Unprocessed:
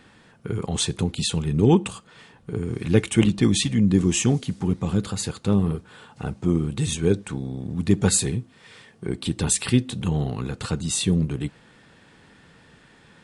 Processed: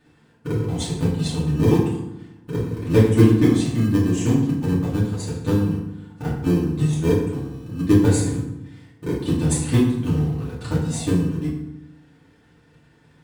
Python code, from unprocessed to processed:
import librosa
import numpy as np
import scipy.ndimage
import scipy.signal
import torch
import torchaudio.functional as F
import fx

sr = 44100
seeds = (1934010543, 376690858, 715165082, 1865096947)

p1 = fx.transient(x, sr, attack_db=11, sustain_db=-3)
p2 = fx.sample_hold(p1, sr, seeds[0], rate_hz=1400.0, jitter_pct=0)
p3 = p1 + (p2 * 10.0 ** (-7.0 / 20.0))
p4 = fx.rev_fdn(p3, sr, rt60_s=0.88, lf_ratio=1.4, hf_ratio=0.65, size_ms=20.0, drr_db=-8.5)
y = p4 * 10.0 ** (-16.5 / 20.0)